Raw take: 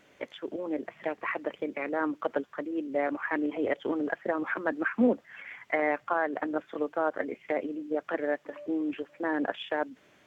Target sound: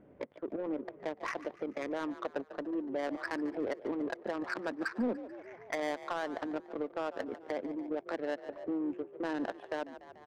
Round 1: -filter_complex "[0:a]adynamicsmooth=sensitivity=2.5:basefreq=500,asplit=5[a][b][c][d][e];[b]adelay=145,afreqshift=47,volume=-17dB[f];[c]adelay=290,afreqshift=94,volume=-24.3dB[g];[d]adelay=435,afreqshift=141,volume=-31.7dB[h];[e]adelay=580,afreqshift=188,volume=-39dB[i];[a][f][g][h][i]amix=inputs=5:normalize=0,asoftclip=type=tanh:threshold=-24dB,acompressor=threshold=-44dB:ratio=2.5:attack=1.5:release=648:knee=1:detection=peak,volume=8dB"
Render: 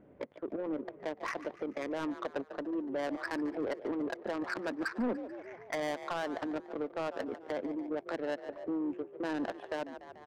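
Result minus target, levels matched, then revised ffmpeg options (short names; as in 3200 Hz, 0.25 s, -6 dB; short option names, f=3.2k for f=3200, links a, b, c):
soft clip: distortion +9 dB
-filter_complex "[0:a]adynamicsmooth=sensitivity=2.5:basefreq=500,asplit=5[a][b][c][d][e];[b]adelay=145,afreqshift=47,volume=-17dB[f];[c]adelay=290,afreqshift=94,volume=-24.3dB[g];[d]adelay=435,afreqshift=141,volume=-31.7dB[h];[e]adelay=580,afreqshift=188,volume=-39dB[i];[a][f][g][h][i]amix=inputs=5:normalize=0,asoftclip=type=tanh:threshold=-16.5dB,acompressor=threshold=-44dB:ratio=2.5:attack=1.5:release=648:knee=1:detection=peak,volume=8dB"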